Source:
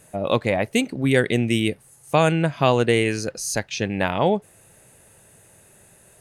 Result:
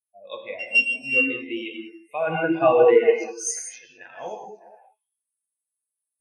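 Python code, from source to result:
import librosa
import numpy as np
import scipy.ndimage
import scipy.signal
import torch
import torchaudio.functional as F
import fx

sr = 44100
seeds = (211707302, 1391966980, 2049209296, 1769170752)

y = fx.sample_sort(x, sr, block=16, at=(0.59, 1.26))
y = fx.env_lowpass_down(y, sr, base_hz=2300.0, full_db=-13.5)
y = fx.tilt_eq(y, sr, slope=4.5)
y = fx.power_curve(y, sr, exponent=0.7, at=(2.27, 2.96))
y = fx.ring_mod(y, sr, carrier_hz=58.0, at=(3.51, 4.14))
y = fx.echo_stepped(y, sr, ms=203, hz=270.0, octaves=1.4, feedback_pct=70, wet_db=-2.5)
y = fx.rev_gated(y, sr, seeds[0], gate_ms=240, shape='flat', drr_db=-1.5)
y = fx.spectral_expand(y, sr, expansion=2.5)
y = y * librosa.db_to_amplitude(-3.0)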